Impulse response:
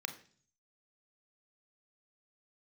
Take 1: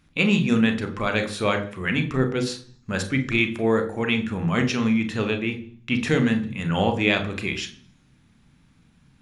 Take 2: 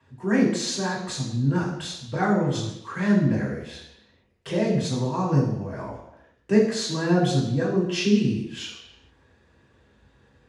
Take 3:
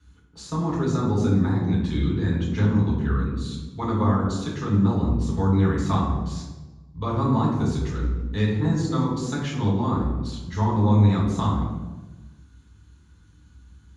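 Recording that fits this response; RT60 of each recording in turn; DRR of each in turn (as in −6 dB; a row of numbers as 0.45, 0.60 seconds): 1; 0.45 s, non-exponential decay, 1.2 s; 6.5, −7.0, −6.0 decibels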